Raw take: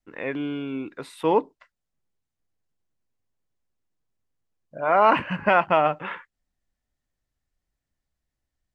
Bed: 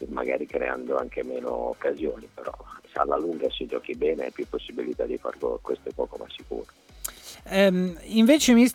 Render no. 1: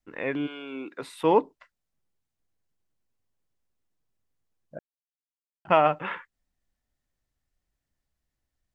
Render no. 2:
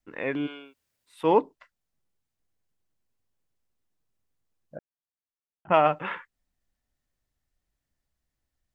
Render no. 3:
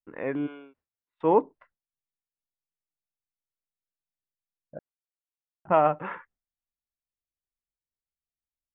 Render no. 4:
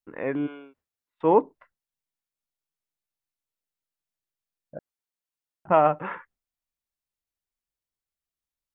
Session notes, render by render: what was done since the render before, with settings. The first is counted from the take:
0.46–1.01 s: high-pass 790 Hz -> 210 Hz; 4.79–5.65 s: mute
0.62–1.18 s: room tone, crossfade 0.24 s; 4.77–5.74 s: distance through air 470 m
low-pass 1.5 kHz 12 dB/octave; gate with hold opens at -53 dBFS
trim +2 dB

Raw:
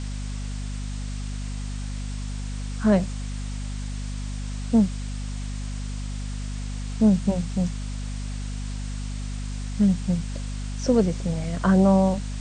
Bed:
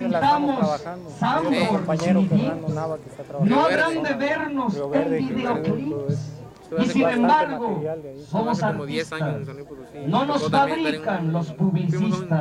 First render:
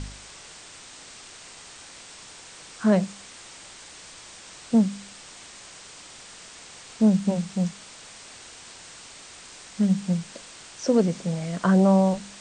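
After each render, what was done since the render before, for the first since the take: de-hum 50 Hz, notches 5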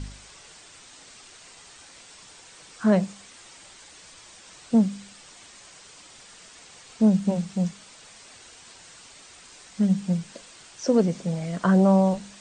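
noise reduction 6 dB, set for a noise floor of -46 dBFS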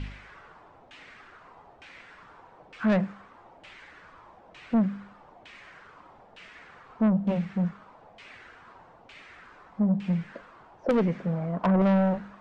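LFO low-pass saw down 1.1 Hz 670–2700 Hz; saturation -18 dBFS, distortion -11 dB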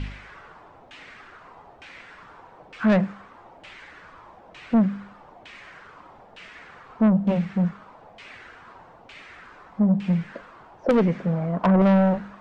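trim +4.5 dB

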